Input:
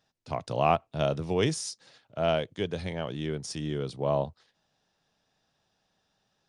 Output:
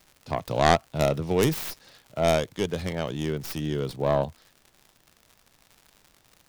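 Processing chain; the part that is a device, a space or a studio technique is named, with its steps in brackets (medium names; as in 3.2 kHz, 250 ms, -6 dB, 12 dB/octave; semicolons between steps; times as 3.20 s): record under a worn stylus (tracing distortion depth 0.27 ms; crackle 130 per s -43 dBFS; pink noise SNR 38 dB); trim +3.5 dB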